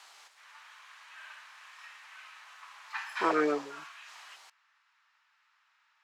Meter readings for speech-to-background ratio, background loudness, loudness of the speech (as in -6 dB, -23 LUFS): 15.0 dB, -45.0 LUFS, -30.0 LUFS